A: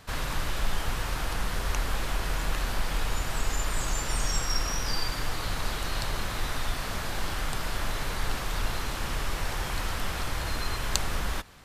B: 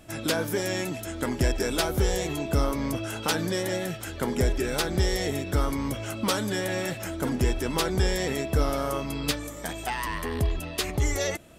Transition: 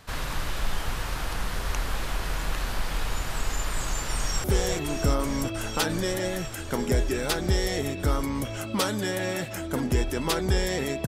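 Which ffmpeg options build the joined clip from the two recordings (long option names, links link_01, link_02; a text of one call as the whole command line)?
ffmpeg -i cue0.wav -i cue1.wav -filter_complex "[0:a]apad=whole_dur=11.07,atrim=end=11.07,atrim=end=4.442[link_01];[1:a]atrim=start=1.928:end=8.56[link_02];[link_01][link_02]acrossfade=duration=0.004:curve1=hsin:curve2=hsin,asplit=2[link_03][link_04];[link_04]afade=type=in:start_time=4.14:duration=0.01,afade=type=out:start_time=4.44:duration=0.01,aecho=0:1:350|700|1050|1400|1750|2100|2450|2800|3150|3500|3850|4200:0.562341|0.47799|0.406292|0.345348|0.293546|0.249514|0.212087|0.180274|0.153233|0.130248|0.110711|0.094104[link_05];[link_03][link_05]amix=inputs=2:normalize=0" out.wav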